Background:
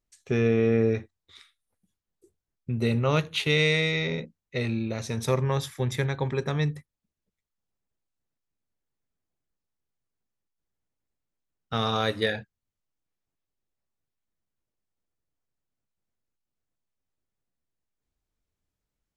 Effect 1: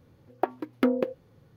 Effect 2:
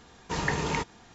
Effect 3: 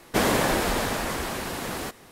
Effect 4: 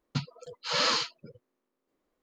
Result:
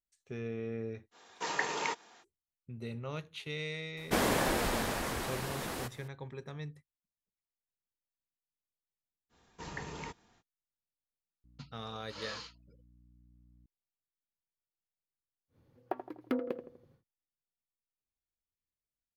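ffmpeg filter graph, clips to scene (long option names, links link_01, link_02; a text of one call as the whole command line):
ffmpeg -i bed.wav -i cue0.wav -i cue1.wav -i cue2.wav -i cue3.wav -filter_complex "[2:a]asplit=2[link_01][link_02];[0:a]volume=-16.5dB[link_03];[link_01]highpass=450[link_04];[4:a]aeval=exprs='val(0)+0.00708*(sin(2*PI*60*n/s)+sin(2*PI*2*60*n/s)/2+sin(2*PI*3*60*n/s)/3+sin(2*PI*4*60*n/s)/4+sin(2*PI*5*60*n/s)/5)':channel_layout=same[link_05];[1:a]asplit=2[link_06][link_07];[link_07]adelay=82,lowpass=frequency=1500:poles=1,volume=-9.5dB,asplit=2[link_08][link_09];[link_09]adelay=82,lowpass=frequency=1500:poles=1,volume=0.49,asplit=2[link_10][link_11];[link_11]adelay=82,lowpass=frequency=1500:poles=1,volume=0.49,asplit=2[link_12][link_13];[link_13]adelay=82,lowpass=frequency=1500:poles=1,volume=0.49,asplit=2[link_14][link_15];[link_15]adelay=82,lowpass=frequency=1500:poles=1,volume=0.49[link_16];[link_06][link_08][link_10][link_12][link_14][link_16]amix=inputs=6:normalize=0[link_17];[link_04]atrim=end=1.14,asetpts=PTS-STARTPTS,volume=-3dB,afade=type=in:duration=0.05,afade=type=out:start_time=1.09:duration=0.05,adelay=1110[link_18];[3:a]atrim=end=2.11,asetpts=PTS-STARTPTS,volume=-7dB,afade=type=in:duration=0.004:curve=hsin,afade=type=out:start_time=2.106:duration=0.004:curve=hsin,adelay=175077S[link_19];[link_02]atrim=end=1.14,asetpts=PTS-STARTPTS,volume=-14dB,afade=type=in:duration=0.05,afade=type=out:start_time=1.09:duration=0.05,adelay=9290[link_20];[link_05]atrim=end=2.22,asetpts=PTS-STARTPTS,volume=-18dB,afade=type=in:duration=0.004:curve=hsin,afade=type=out:start_time=2.216:duration=0.004:curve=hsin,adelay=11440[link_21];[link_17]atrim=end=1.56,asetpts=PTS-STARTPTS,volume=-10dB,afade=type=in:duration=0.1,afade=type=out:start_time=1.46:duration=0.1,adelay=15480[link_22];[link_03][link_18][link_19][link_20][link_21][link_22]amix=inputs=6:normalize=0" out.wav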